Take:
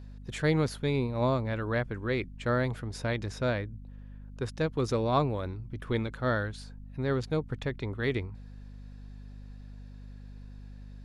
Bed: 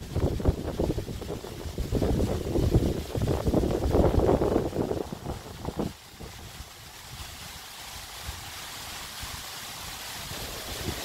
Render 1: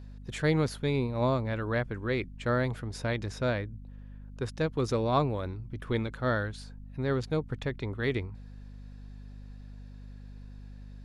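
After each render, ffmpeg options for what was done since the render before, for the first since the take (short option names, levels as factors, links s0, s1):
-af anull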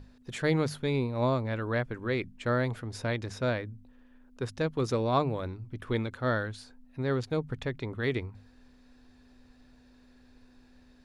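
-af "bandreject=f=50:t=h:w=6,bandreject=f=100:t=h:w=6,bandreject=f=150:t=h:w=6,bandreject=f=200:t=h:w=6"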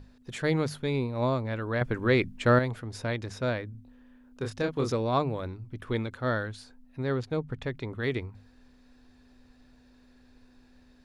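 -filter_complex "[0:a]asettb=1/sr,asplit=3[s0][s1][s2];[s0]atrim=end=1.814[s3];[s1]atrim=start=1.81:end=2.59,asetpts=PTS-STARTPTS,afade=t=in:d=0.004:c=qsin,afade=t=out:st=0.776:d=0.004:c=qsin,acontrast=84[s4];[s2]atrim=start=2.586[s5];[s3][s4]acrossfade=d=0.004:c1=hsin:c2=qsin[s6];[s6][s5]acrossfade=d=0.004:c1=qsin:c2=hsin,asettb=1/sr,asplit=3[s7][s8][s9];[s7]atrim=end=3.714[s10];[s8]atrim=start=3.71:end=4.92,asetpts=PTS-STARTPTS,afade=t=in:d=0.004:c=qsin,afade=t=out:st=1.206:d=0.004:c=qsin,asplit=2[s11][s12];[s12]adelay=28,volume=0.631[s13];[s11][s13]amix=inputs=2:normalize=0,atrim=end_sample=53361[s14];[s9]atrim=start=4.916[s15];[s10][s14]acrossfade=d=0.004:c1=hsin:c2=qsin[s16];[s16][s15]acrossfade=d=0.004:c1=qsin:c2=hsin,asettb=1/sr,asplit=3[s17][s18][s19];[s17]atrim=end=7.124[s20];[s18]atrim=start=7.12:end=7.64,asetpts=PTS-STARTPTS,afade=t=in:d=0.004:c=qsin,afade=t=out:st=0.516:d=0.004:c=qsin,highshelf=f=4500:g=-6[s21];[s19]atrim=start=7.636[s22];[s20][s21]acrossfade=d=0.004:c1=hsin:c2=qsin[s23];[s23][s22]acrossfade=d=0.004:c1=qsin:c2=hsin"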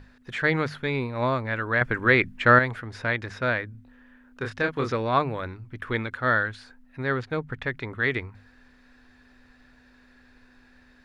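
-filter_complex "[0:a]acrossover=split=5200[s0][s1];[s1]acompressor=threshold=0.00126:ratio=4:attack=1:release=60[s2];[s0][s2]amix=inputs=2:normalize=0,equalizer=f=1700:t=o:w=1.4:g=12"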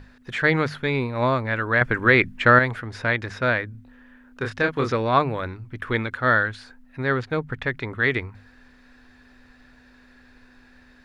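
-af "volume=1.5,alimiter=limit=0.708:level=0:latency=1"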